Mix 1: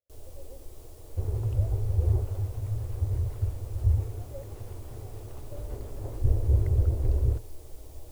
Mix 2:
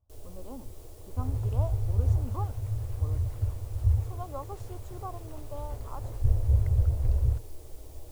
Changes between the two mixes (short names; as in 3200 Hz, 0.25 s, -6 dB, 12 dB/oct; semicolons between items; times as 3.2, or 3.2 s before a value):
speech: remove vowel filter e; second sound: add bell 340 Hz -14.5 dB 0.74 oct